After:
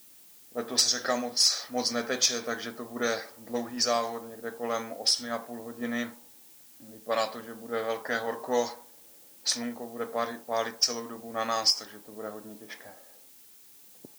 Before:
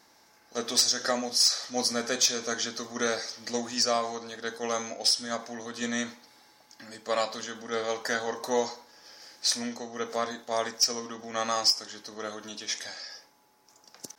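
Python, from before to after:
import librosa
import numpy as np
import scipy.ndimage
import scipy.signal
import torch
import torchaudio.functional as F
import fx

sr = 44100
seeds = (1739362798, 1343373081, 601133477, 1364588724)

y = fx.env_lowpass(x, sr, base_hz=350.0, full_db=-21.0)
y = fx.dmg_noise_colour(y, sr, seeds[0], colour='blue', level_db=-54.0)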